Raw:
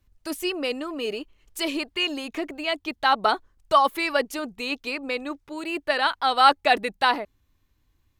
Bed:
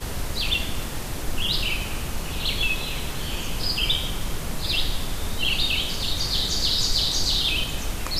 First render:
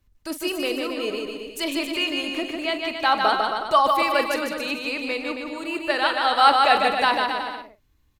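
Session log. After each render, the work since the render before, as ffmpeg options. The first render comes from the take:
-filter_complex "[0:a]asplit=2[a][b];[b]adelay=43,volume=-13dB[c];[a][c]amix=inputs=2:normalize=0,aecho=1:1:150|270|366|442.8|504.2:0.631|0.398|0.251|0.158|0.1"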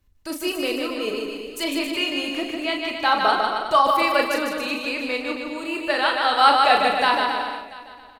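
-filter_complex "[0:a]asplit=2[a][b];[b]adelay=36,volume=-6dB[c];[a][c]amix=inputs=2:normalize=0,aecho=1:1:686:0.0944"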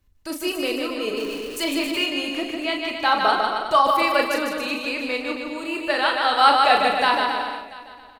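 -filter_complex "[0:a]asettb=1/sr,asplit=3[a][b][c];[a]atrim=end=1.174[d];[b]atrim=start=1.17:end=2.06,asetpts=PTS-STARTPTS,afade=t=in:d=0.004:c=qsin,afade=t=out:st=0.886:d=0.004:c=qsin,aeval=exprs='val(0)+0.5*0.0188*sgn(val(0))':c=same[e];[c]atrim=start=2.056[f];[d][e]acrossfade=d=0.004:c1=hsin:c2=qsin[g];[g][f]acrossfade=d=0.004:c1=qsin:c2=hsin"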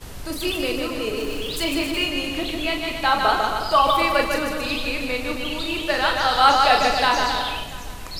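-filter_complex "[1:a]volume=-7dB[a];[0:a][a]amix=inputs=2:normalize=0"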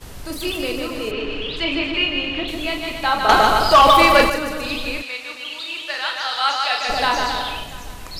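-filter_complex "[0:a]asettb=1/sr,asplit=3[a][b][c];[a]atrim=end=1.114[d];[b]atrim=start=1.11:end=2.48,asetpts=PTS-STARTPTS,afade=t=in:d=0.004:c=qsin,afade=t=out:st=1.366:d=0.004:c=qsin,lowpass=f=3k:t=q:w=1.6[e];[c]atrim=start=2.476[f];[d][e]acrossfade=d=0.004:c1=hsin:c2=qsin[g];[g][f]acrossfade=d=0.004:c1=qsin:c2=hsin,asettb=1/sr,asplit=3[h][i][j];[h]atrim=end=3.294[k];[i]atrim=start=3.29:end=4.3,asetpts=PTS-STARTPTS,afade=t=in:d=0.004:c=qsin,afade=t=out:st=1.006:d=0.004:c=qsin,aeval=exprs='0.562*sin(PI/2*1.78*val(0)/0.562)':c=same[l];[j]atrim=start=4.296[m];[k][l]acrossfade=d=0.004:c1=hsin:c2=qsin[n];[n][m]acrossfade=d=0.004:c1=qsin:c2=hsin,asplit=3[o][p][q];[o]afade=t=out:st=5.01:d=0.02[r];[p]bandpass=f=3.5k:t=q:w=0.55,afade=t=in:st=5.01:d=0.02,afade=t=out:st=6.88:d=0.02[s];[q]afade=t=in:st=6.88:d=0.02[t];[r][s][t]amix=inputs=3:normalize=0"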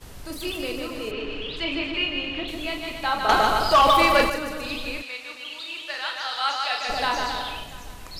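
-af "volume=-5.5dB"

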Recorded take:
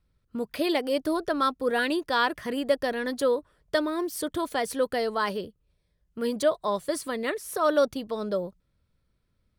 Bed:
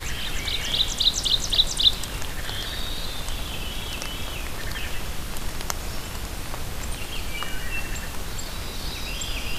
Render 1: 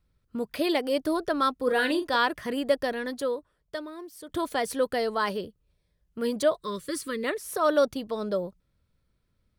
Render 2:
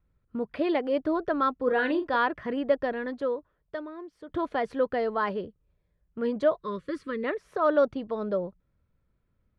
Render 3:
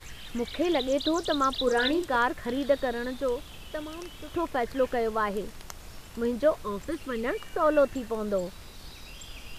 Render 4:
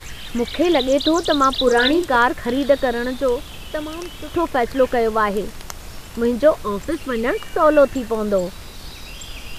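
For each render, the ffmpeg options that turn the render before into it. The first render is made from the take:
-filter_complex "[0:a]asettb=1/sr,asplit=3[a][b][c];[a]atrim=end=1.634[d];[b]atrim=start=1.63:end=2.16,asetpts=PTS-STARTPTS,afade=t=in:d=0.004:c=qsin,afade=t=out:st=0.526:d=0.004:c=qsin,asplit=2[e][f];[f]adelay=40,volume=-8dB[g];[e][g]amix=inputs=2:normalize=0,atrim=end_sample=23373[h];[c]atrim=start=2.156[i];[d][h]acrossfade=d=0.004:c1=hsin:c2=qsin[j];[j][i]acrossfade=d=0.004:c1=qsin:c2=hsin,asettb=1/sr,asplit=3[k][l][m];[k]atrim=end=6.594[n];[l]atrim=start=6.59:end=7.24,asetpts=PTS-STARTPTS,afade=t=in:d=0.004:c=qsin,afade=t=out:st=0.646:d=0.004:c=qsin,asuperstop=centerf=760:order=8:qfactor=1.4[o];[m]atrim=start=7.236[p];[n][o]acrossfade=d=0.004:c1=hsin:c2=qsin[q];[q][p]acrossfade=d=0.004:c1=qsin:c2=hsin,asplit=2[r][s];[r]atrim=end=4.29,asetpts=PTS-STARTPTS,afade=t=out:st=2.79:d=1.5:c=qua:silence=0.223872[t];[s]atrim=start=4.29,asetpts=PTS-STARTPTS,afade=t=in:d=0.004:c=hsin:silence=0.223872[u];[t][u]concat=n=2:v=0:a=1"
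-af "lowpass=2k"
-filter_complex "[1:a]volume=-14dB[a];[0:a][a]amix=inputs=2:normalize=0"
-af "volume=9.5dB,alimiter=limit=-3dB:level=0:latency=1"

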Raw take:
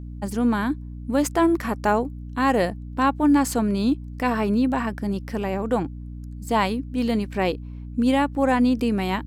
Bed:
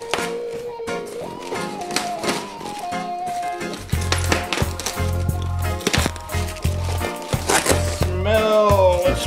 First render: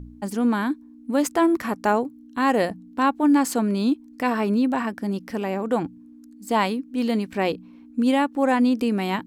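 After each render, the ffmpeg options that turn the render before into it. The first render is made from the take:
-af "bandreject=f=60:t=h:w=4,bandreject=f=120:t=h:w=4,bandreject=f=180:t=h:w=4"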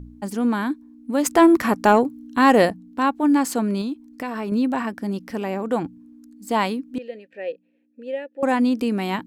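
-filter_complex "[0:a]asplit=3[a][b][c];[a]afade=t=out:st=1.25:d=0.02[d];[b]acontrast=61,afade=t=in:st=1.25:d=0.02,afade=t=out:st=2.69:d=0.02[e];[c]afade=t=in:st=2.69:d=0.02[f];[d][e][f]amix=inputs=3:normalize=0,asettb=1/sr,asplit=3[g][h][i];[g]atrim=end=3.814[j];[h]atrim=start=3.81:end=4.52,asetpts=PTS-STARTPTS,afade=t=in:d=0.004:c=qsin,afade=t=out:st=0.706:d=0.004:c=qsin,acompressor=threshold=-24dB:ratio=6:attack=3.2:release=140:knee=1:detection=peak[k];[i]atrim=start=4.516[l];[j][k]acrossfade=d=0.004:c1=hsin:c2=qsin[m];[m][l]acrossfade=d=0.004:c1=qsin:c2=hsin,asettb=1/sr,asplit=3[n][o][p];[n]atrim=end=6.984[q];[o]atrim=start=6.98:end=8.43,asetpts=PTS-STARTPTS,afade=t=in:d=0.004:c=qsin,afade=t=out:st=1.446:d=0.004:c=qsin,asplit=3[r][s][t];[r]bandpass=f=530:t=q:w=8,volume=0dB[u];[s]bandpass=f=1.84k:t=q:w=8,volume=-6dB[v];[t]bandpass=f=2.48k:t=q:w=8,volume=-9dB[w];[u][v][w]amix=inputs=3:normalize=0[x];[p]atrim=start=8.426[y];[q][x]acrossfade=d=0.004:c1=hsin:c2=qsin[z];[z][y]acrossfade=d=0.004:c1=qsin:c2=hsin"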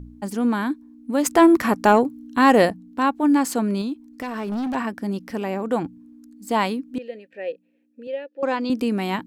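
-filter_complex "[0:a]asettb=1/sr,asplit=3[a][b][c];[a]atrim=end=4.074[d];[b]atrim=start=4.07:end=4.75,asetpts=PTS-STARTPTS,afade=t=in:d=0.004:c=qsin,afade=t=out:st=0.676:d=0.004:c=qsin,asoftclip=type=hard:threshold=-23.5dB[e];[c]atrim=start=4.746[f];[d][e]acrossfade=d=0.004:c1=hsin:c2=qsin[g];[g][f]acrossfade=d=0.004:c1=qsin:c2=hsin,asettb=1/sr,asplit=3[h][i][j];[h]atrim=end=8.074[k];[i]atrim=start=8.07:end=8.7,asetpts=PTS-STARTPTS,afade=t=in:d=0.004:c=qsin,afade=t=out:st=0.626:d=0.004:c=qsin,highpass=190,equalizer=f=240:t=q:w=4:g=-8,equalizer=f=770:t=q:w=4:g=-5,equalizer=f=1.9k:t=q:w=4:g=-5,equalizer=f=4.7k:t=q:w=4:g=4,lowpass=f=5.7k:w=0.5412,lowpass=f=5.7k:w=1.3066[l];[j]atrim=start=8.696[m];[k][l]acrossfade=d=0.004:c1=hsin:c2=qsin[n];[n][m]acrossfade=d=0.004:c1=qsin:c2=hsin"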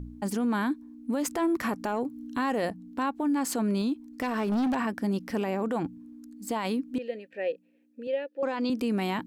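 -af "acompressor=threshold=-22dB:ratio=6,alimiter=limit=-21dB:level=0:latency=1:release=11"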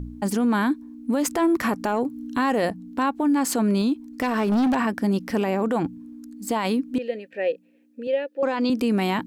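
-af "volume=6dB"

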